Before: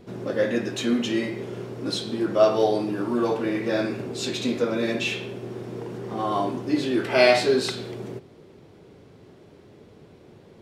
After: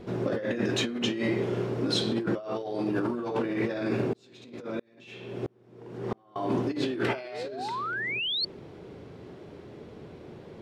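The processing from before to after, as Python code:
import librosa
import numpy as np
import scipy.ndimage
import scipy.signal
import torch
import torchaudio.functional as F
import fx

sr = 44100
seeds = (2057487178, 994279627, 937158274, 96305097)

y = fx.spec_paint(x, sr, seeds[0], shape='rise', start_s=7.24, length_s=1.21, low_hz=340.0, high_hz=4500.0, level_db=-23.0)
y = fx.high_shelf(y, sr, hz=6000.0, db=-11.0)
y = fx.hum_notches(y, sr, base_hz=50, count=5)
y = fx.over_compress(y, sr, threshold_db=-30.0, ratio=-1.0)
y = fx.tremolo_decay(y, sr, direction='swelling', hz=1.5, depth_db=37, at=(4.13, 6.36))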